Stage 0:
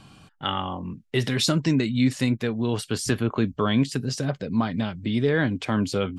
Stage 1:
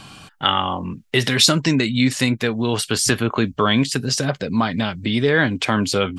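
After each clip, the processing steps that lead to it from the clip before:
in parallel at −3 dB: downward compressor, threshold −30 dBFS, peak gain reduction 13.5 dB
on the sum: tilt shelving filter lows −4 dB, about 630 Hz
level +4.5 dB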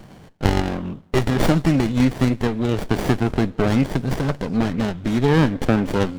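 on a send at −21 dB: convolution reverb, pre-delay 3 ms
on the sum: windowed peak hold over 33 samples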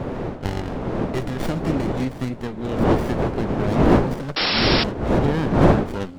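wind on the microphone 440 Hz −14 dBFS
sound drawn into the spectrogram noise, 0:04.36–0:04.84, 260–5,600 Hz −13 dBFS
level −8 dB

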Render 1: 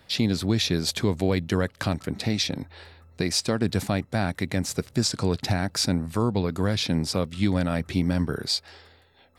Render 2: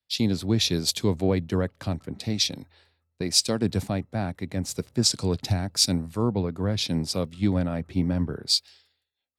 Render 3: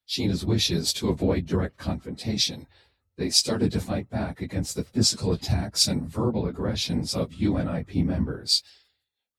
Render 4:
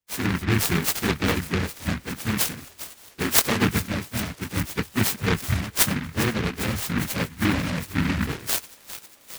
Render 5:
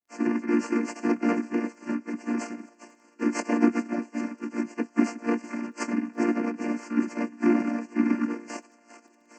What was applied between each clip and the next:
dynamic equaliser 1,600 Hz, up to −5 dB, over −45 dBFS, Q 1.2; multiband upward and downward expander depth 100%; level −1 dB
random phases in long frames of 50 ms
rotating-speaker cabinet horn 0.8 Hz, later 7.5 Hz, at 0:04.25; delay with a high-pass on its return 404 ms, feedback 77%, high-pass 1,400 Hz, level −13 dB; short delay modulated by noise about 1,600 Hz, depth 0.3 ms; level +2.5 dB
channel vocoder with a chord as carrier major triad, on A#3; Butterworth band-reject 3,600 Hz, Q 1.4; surface crackle 15 per second −56 dBFS

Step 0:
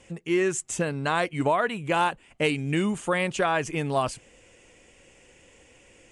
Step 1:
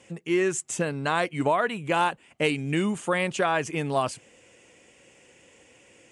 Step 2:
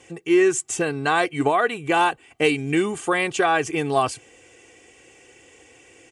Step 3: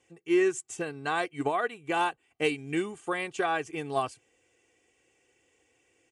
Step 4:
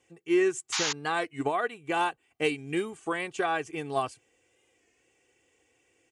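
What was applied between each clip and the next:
high-pass filter 110 Hz 12 dB per octave
comb filter 2.6 ms, depth 60%; level +3.5 dB
expander for the loud parts 1.5 to 1, over −37 dBFS; level −6.5 dB
sound drawn into the spectrogram noise, 0:00.72–0:00.93, 780–7,200 Hz −29 dBFS; wow of a warped record 33 1/3 rpm, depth 100 cents

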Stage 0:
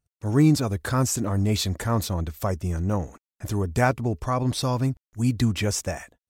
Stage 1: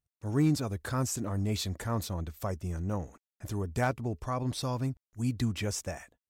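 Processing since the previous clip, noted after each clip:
gain into a clipping stage and back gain 10 dB
level −8 dB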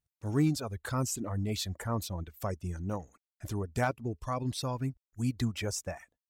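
reverb reduction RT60 1.1 s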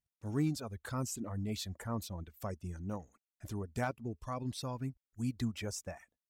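parametric band 220 Hz +4 dB 0.38 octaves
level −6 dB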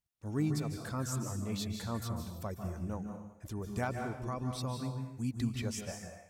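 convolution reverb RT60 0.80 s, pre-delay 137 ms, DRR 4 dB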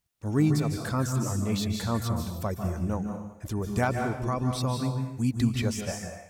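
de-essing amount 100%
level +9 dB

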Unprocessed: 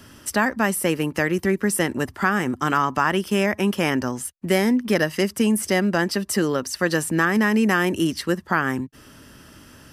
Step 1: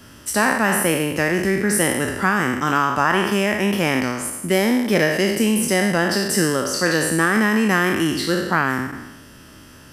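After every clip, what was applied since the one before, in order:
peak hold with a decay on every bin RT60 1.07 s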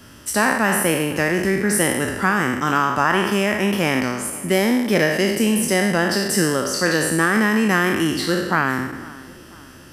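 tape delay 496 ms, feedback 50%, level −19 dB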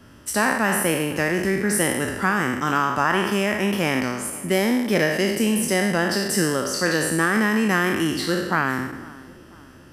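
one half of a high-frequency compander decoder only
level −2.5 dB

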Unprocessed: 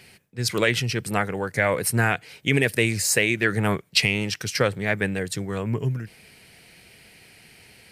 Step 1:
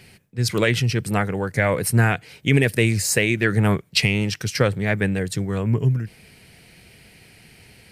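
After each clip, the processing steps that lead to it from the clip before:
low-shelf EQ 260 Hz +8 dB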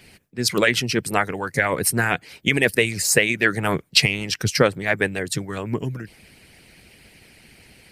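harmonic and percussive parts rebalanced harmonic −15 dB
level +4.5 dB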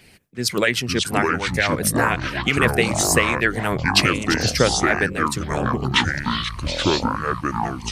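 delay with pitch and tempo change per echo 351 ms, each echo −6 semitones, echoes 3
level −1 dB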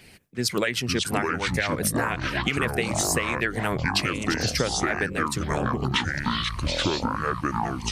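downward compressor, threshold −21 dBFS, peak gain reduction 10 dB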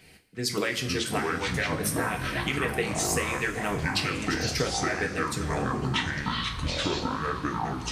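coupled-rooms reverb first 0.35 s, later 4.1 s, from −17 dB, DRR 1.5 dB
level −5 dB

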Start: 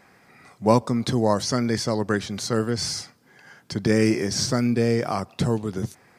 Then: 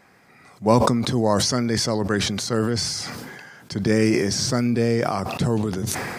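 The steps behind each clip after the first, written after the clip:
level that may fall only so fast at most 28 dB per second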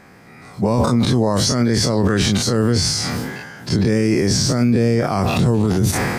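every bin's largest magnitude spread in time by 60 ms
low-shelf EQ 350 Hz +8 dB
boost into a limiter +10 dB
level −7 dB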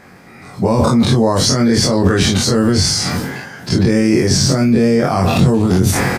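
double-tracking delay 22 ms −4 dB
level +2.5 dB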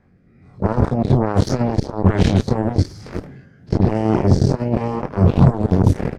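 RIAA equalisation playback
rotating-speaker cabinet horn 1.2 Hz
harmonic generator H 7 −14 dB, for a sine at 6.5 dBFS
level −9 dB

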